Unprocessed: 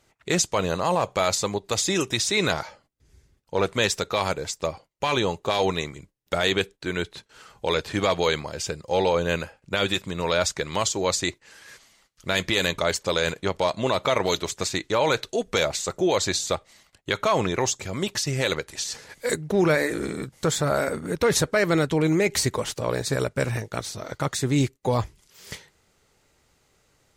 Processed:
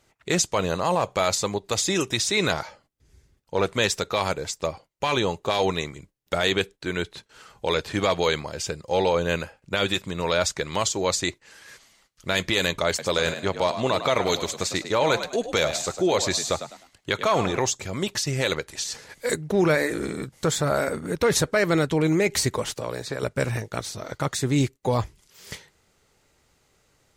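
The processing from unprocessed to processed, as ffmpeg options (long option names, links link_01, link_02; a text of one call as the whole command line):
ffmpeg -i in.wav -filter_complex "[0:a]asettb=1/sr,asplit=3[link_01][link_02][link_03];[link_01]atrim=end=12.884[link_04];[link_02]atrim=start=12.88:end=17.6,asetpts=PTS-STARTPTS,afade=type=in:duration=0.004:curve=qsin,afade=type=out:start_time=4.716:duration=0.004:curve=qsin,asplit=4[link_05][link_06][link_07][link_08];[link_06]adelay=103,afreqshift=57,volume=-10.5dB[link_09];[link_07]adelay=206,afreqshift=114,volume=-20.7dB[link_10];[link_08]adelay=309,afreqshift=171,volume=-30.8dB[link_11];[link_05][link_09][link_10][link_11]amix=inputs=4:normalize=0,atrim=end_sample=208152[link_12];[link_03]atrim=start=17.596[link_13];[link_04][link_12]acrossfade=duration=0.004:curve1=hsin:curve2=qsin[link_14];[link_14][link_13]acrossfade=duration=0.004:curve1=qsin:curve2=hsin,asettb=1/sr,asplit=3[link_15][link_16][link_17];[link_15]atrim=end=22.784[link_18];[link_16]atrim=start=22.78:end=23.23,asetpts=PTS-STARTPTS,afade=type=in:duration=0.004:curve=qsin,afade=type=out:start_time=0.446:duration=0.004:curve=qsin,acrossover=split=290|4600[link_19][link_20][link_21];[link_19]acompressor=threshold=-38dB:ratio=4[link_22];[link_20]acompressor=threshold=-28dB:ratio=4[link_23];[link_21]acompressor=threshold=-46dB:ratio=4[link_24];[link_22][link_23][link_24]amix=inputs=3:normalize=0[link_25];[link_17]atrim=start=23.226[link_26];[link_18][link_25]acrossfade=duration=0.004:curve1=hsin:curve2=qsin[link_27];[link_27][link_26]acrossfade=duration=0.004:curve1=qsin:curve2=hsin" out.wav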